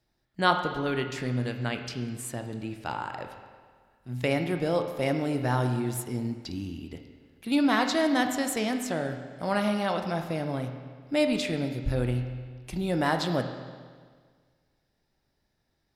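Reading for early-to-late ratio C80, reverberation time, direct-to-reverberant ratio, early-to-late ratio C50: 8.5 dB, 1.7 s, 5.5 dB, 7.5 dB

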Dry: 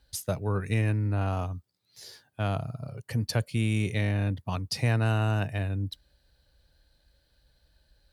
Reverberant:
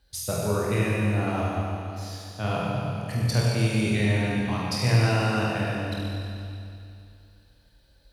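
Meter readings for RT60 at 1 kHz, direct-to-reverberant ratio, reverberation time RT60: 2.6 s, -6.0 dB, 2.6 s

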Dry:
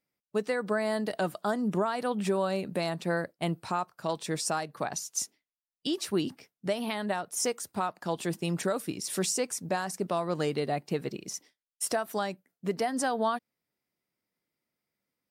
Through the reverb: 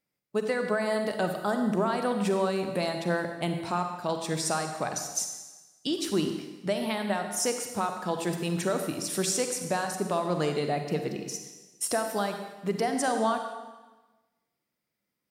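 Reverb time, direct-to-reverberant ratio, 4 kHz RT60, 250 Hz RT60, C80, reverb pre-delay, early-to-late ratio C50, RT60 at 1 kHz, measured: 1.2 s, 5.5 dB, 1.2 s, 1.2 s, 7.5 dB, 37 ms, 6.0 dB, 1.2 s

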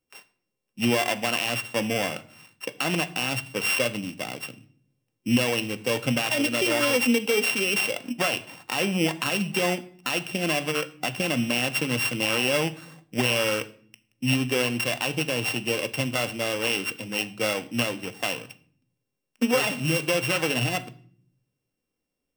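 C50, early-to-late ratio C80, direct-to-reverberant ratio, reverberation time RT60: 18.0 dB, 21.0 dB, 9.0 dB, 0.55 s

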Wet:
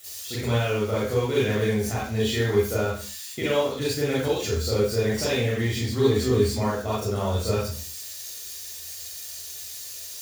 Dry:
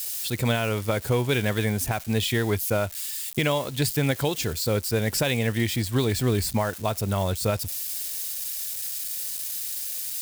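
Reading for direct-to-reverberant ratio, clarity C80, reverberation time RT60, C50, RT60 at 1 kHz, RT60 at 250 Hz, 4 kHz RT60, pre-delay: -7.5 dB, 5.0 dB, 0.45 s, -1.0 dB, 0.40 s, no reading, 0.40 s, 35 ms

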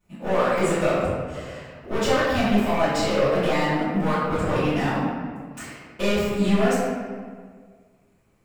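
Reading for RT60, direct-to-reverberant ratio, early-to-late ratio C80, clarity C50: 1.7 s, -18.0 dB, 0.5 dB, -2.0 dB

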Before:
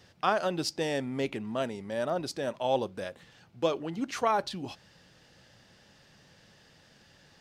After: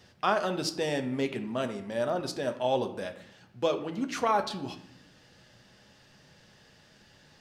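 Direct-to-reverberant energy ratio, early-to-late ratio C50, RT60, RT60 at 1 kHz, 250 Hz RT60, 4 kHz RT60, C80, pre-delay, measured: 6.5 dB, 12.5 dB, 0.80 s, 0.80 s, 1.2 s, 0.50 s, 14.5 dB, 5 ms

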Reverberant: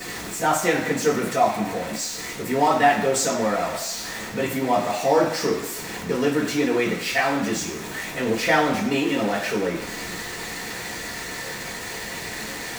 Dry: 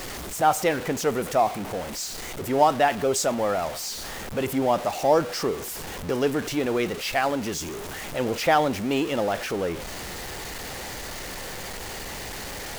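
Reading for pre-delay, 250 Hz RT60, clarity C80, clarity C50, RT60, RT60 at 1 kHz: 3 ms, 0.90 s, 9.0 dB, 6.5 dB, 1.0 s, 1.0 s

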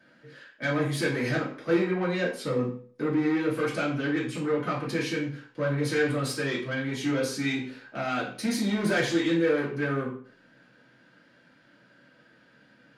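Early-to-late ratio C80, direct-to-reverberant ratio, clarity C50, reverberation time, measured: 11.0 dB, -6.5 dB, 7.0 dB, 0.50 s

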